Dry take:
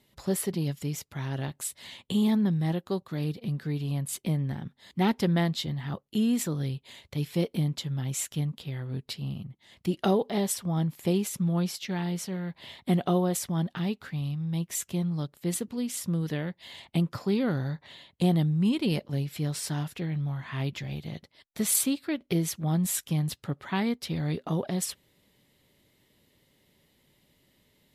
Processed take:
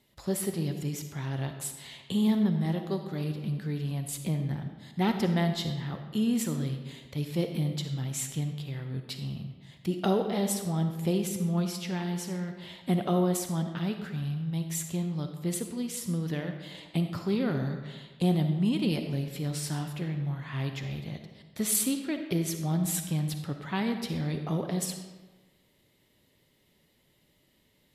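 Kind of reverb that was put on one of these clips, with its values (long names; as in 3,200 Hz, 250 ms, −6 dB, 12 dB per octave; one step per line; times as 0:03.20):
comb and all-pass reverb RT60 1.3 s, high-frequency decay 0.7×, pre-delay 15 ms, DRR 6 dB
level −2 dB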